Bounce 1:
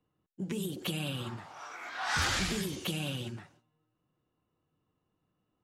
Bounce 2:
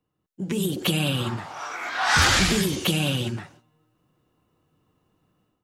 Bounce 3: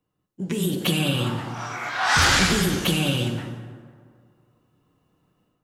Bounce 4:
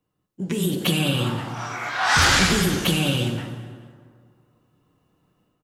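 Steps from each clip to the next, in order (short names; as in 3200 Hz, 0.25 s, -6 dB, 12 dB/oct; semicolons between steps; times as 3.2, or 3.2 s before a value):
AGC gain up to 11.5 dB
plate-style reverb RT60 2 s, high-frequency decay 0.5×, DRR 5 dB
feedback echo 0.212 s, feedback 44%, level -21 dB; gain +1 dB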